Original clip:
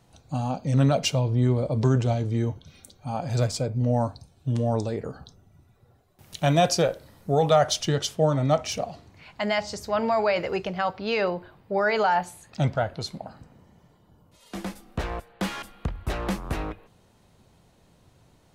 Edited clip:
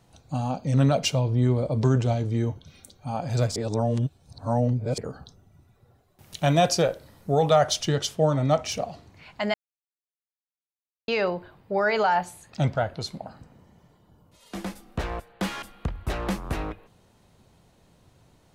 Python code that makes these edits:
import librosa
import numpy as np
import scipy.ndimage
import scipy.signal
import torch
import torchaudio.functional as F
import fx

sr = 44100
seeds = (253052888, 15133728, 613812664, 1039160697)

y = fx.edit(x, sr, fx.reverse_span(start_s=3.56, length_s=1.42),
    fx.silence(start_s=9.54, length_s=1.54), tone=tone)